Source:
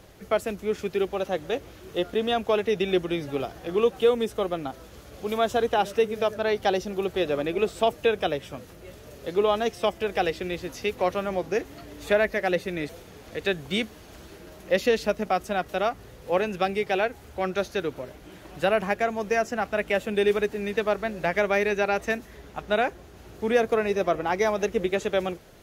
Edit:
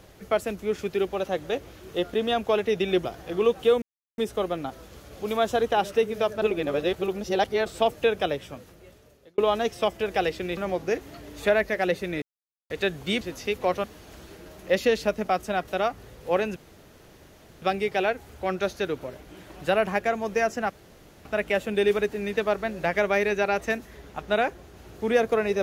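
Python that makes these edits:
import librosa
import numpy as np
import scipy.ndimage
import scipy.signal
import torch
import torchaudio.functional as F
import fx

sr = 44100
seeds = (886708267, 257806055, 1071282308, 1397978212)

y = fx.edit(x, sr, fx.cut(start_s=3.05, length_s=0.37),
    fx.insert_silence(at_s=4.19, length_s=0.36),
    fx.reverse_span(start_s=6.43, length_s=1.24),
    fx.fade_out_span(start_s=8.32, length_s=1.07),
    fx.move(start_s=10.58, length_s=0.63, to_s=13.85),
    fx.silence(start_s=12.86, length_s=0.48),
    fx.insert_room_tone(at_s=16.57, length_s=1.06),
    fx.insert_room_tone(at_s=19.65, length_s=0.55), tone=tone)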